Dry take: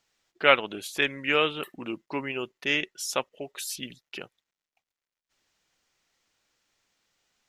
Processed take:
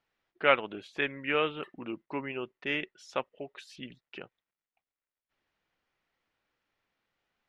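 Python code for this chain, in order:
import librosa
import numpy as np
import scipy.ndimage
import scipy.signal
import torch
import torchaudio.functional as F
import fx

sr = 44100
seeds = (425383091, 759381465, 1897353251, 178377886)

y = scipy.signal.sosfilt(scipy.signal.butter(2, 2500.0, 'lowpass', fs=sr, output='sos'), x)
y = y * 10.0 ** (-3.5 / 20.0)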